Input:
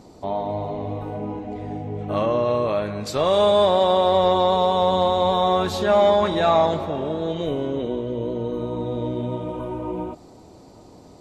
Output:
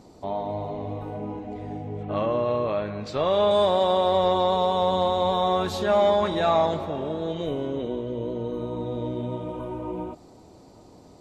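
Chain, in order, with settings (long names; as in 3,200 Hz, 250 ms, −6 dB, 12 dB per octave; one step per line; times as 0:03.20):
0:02.03–0:03.51: low-pass filter 4,100 Hz 12 dB per octave
level −3.5 dB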